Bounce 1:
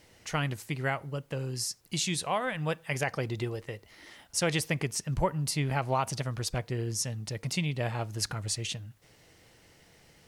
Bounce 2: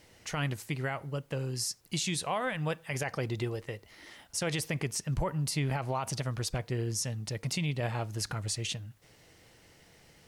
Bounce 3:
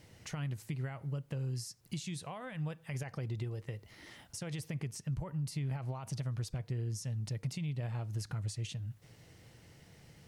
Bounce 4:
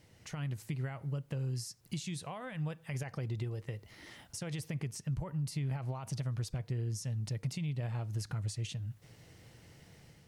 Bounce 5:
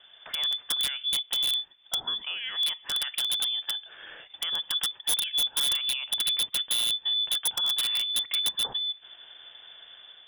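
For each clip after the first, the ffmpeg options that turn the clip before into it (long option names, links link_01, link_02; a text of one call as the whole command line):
ffmpeg -i in.wav -af "alimiter=limit=-22.5dB:level=0:latency=1:release=34" out.wav
ffmpeg -i in.wav -af "acompressor=threshold=-41dB:ratio=4,equalizer=frequency=120:width=0.77:gain=10.5,volume=-3dB" out.wav
ffmpeg -i in.wav -af "dynaudnorm=framelen=140:gausssize=5:maxgain=5dB,volume=-4dB" out.wav
ffmpeg -i in.wav -af "lowpass=frequency=3100:width_type=q:width=0.5098,lowpass=frequency=3100:width_type=q:width=0.6013,lowpass=frequency=3100:width_type=q:width=0.9,lowpass=frequency=3100:width_type=q:width=2.563,afreqshift=-3600,aeval=exprs='(mod(28.2*val(0)+1,2)-1)/28.2':channel_layout=same,volume=8.5dB" out.wav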